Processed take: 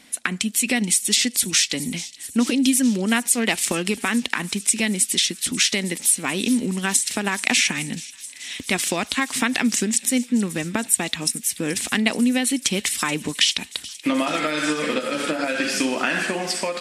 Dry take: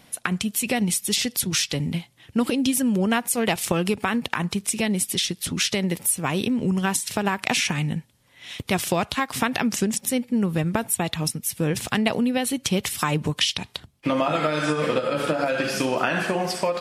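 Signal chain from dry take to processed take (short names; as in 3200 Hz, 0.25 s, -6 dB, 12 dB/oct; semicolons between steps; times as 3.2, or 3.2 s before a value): graphic EQ 125/250/2000/4000/8000 Hz -11/+11/+9/+5/+12 dB; on a send: thin delay 0.43 s, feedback 79%, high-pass 4000 Hz, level -15 dB; on the sum: gain -5 dB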